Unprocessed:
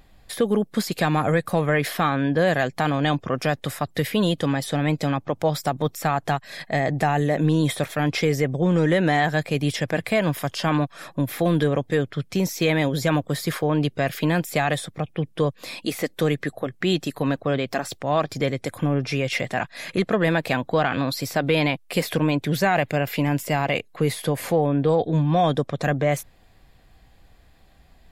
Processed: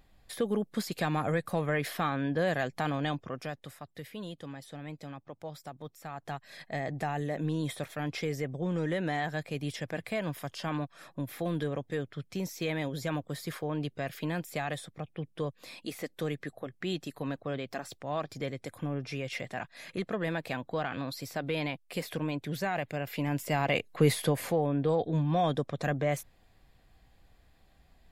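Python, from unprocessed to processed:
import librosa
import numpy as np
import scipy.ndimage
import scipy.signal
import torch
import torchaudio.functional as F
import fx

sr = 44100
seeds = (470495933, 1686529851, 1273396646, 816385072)

y = fx.gain(x, sr, db=fx.line((2.96, -9.0), (3.87, -20.0), (6.06, -20.0), (6.46, -12.0), (22.98, -12.0), (24.1, -1.0), (24.56, -8.0)))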